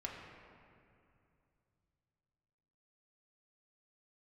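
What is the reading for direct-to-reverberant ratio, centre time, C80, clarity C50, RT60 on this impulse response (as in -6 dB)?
-3.0 dB, 86 ms, 3.5 dB, 2.5 dB, 2.6 s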